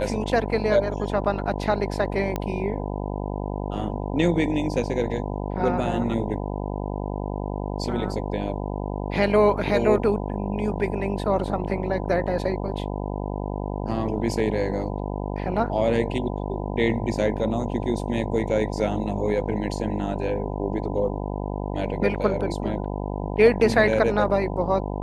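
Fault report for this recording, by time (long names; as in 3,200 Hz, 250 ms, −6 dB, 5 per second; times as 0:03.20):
mains buzz 50 Hz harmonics 20 −29 dBFS
0:02.36: click −13 dBFS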